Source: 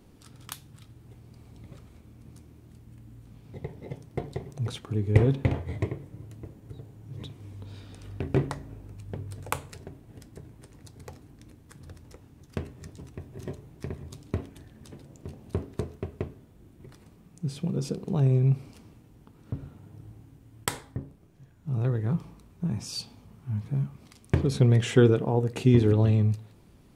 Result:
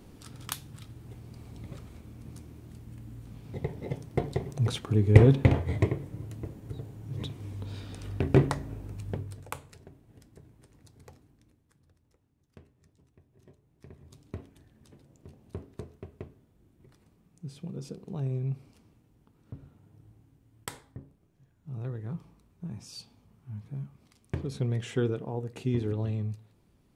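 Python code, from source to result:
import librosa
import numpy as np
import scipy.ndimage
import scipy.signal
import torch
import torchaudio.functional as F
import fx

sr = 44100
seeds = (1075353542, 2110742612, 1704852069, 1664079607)

y = fx.gain(x, sr, db=fx.line((9.09, 4.0), (9.5, -8.0), (11.11, -8.0), (11.91, -20.0), (13.6, -20.0), (14.15, -9.5)))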